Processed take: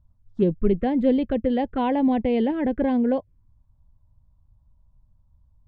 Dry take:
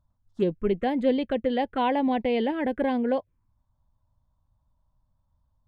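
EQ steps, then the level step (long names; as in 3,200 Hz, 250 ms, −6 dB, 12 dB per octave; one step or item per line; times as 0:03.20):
high-frequency loss of the air 65 metres
low-shelf EQ 130 Hz +7 dB
low-shelf EQ 460 Hz +9 dB
−3.0 dB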